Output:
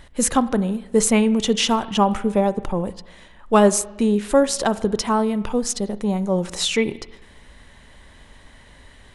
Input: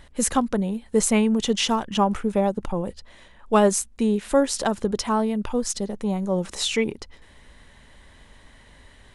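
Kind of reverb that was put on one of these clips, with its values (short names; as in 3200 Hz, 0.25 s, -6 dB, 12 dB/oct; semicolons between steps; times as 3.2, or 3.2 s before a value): spring tank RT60 1 s, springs 34/48 ms, chirp 35 ms, DRR 15.5 dB; gain +3 dB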